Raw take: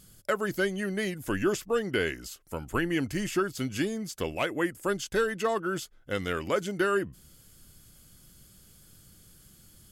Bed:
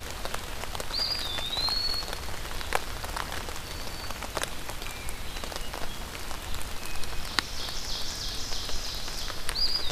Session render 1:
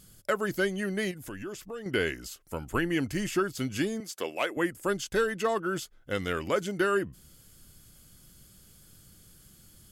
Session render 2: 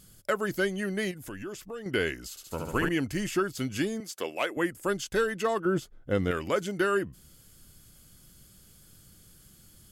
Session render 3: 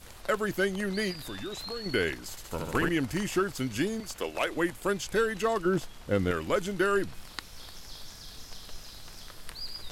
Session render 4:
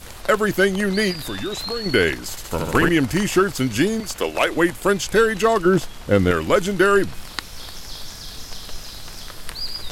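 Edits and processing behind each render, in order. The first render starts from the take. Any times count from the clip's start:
1.11–1.86 s: compression 2.5:1, threshold -41 dBFS; 4.00–4.57 s: high-pass 340 Hz
2.30–2.89 s: flutter echo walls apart 12 m, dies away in 1.4 s; 5.65–6.31 s: tilt shelf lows +7 dB, about 1.2 kHz
add bed -12.5 dB
trim +10.5 dB

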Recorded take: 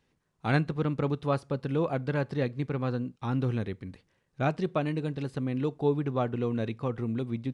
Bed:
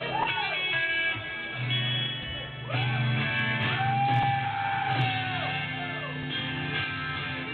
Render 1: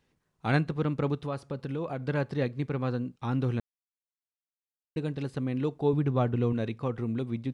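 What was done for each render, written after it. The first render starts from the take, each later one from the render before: 1.15–2.07 s: compression 2.5:1, threshold -31 dBFS; 3.60–4.96 s: mute; 5.93–6.53 s: bass shelf 130 Hz +11 dB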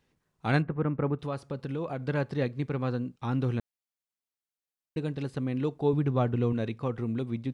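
0.62–1.19 s: low-pass 2.1 kHz 24 dB/octave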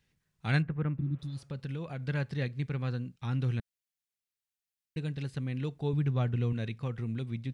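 1.00–1.36 s: spectral replace 370–3400 Hz both; high-order bell 550 Hz -9 dB 2.7 oct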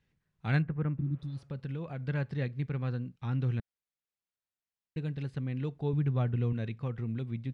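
low-pass 2.1 kHz 6 dB/octave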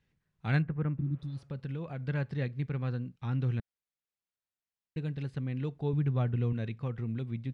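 no audible change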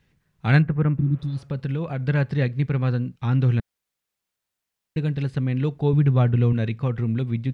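trim +11 dB

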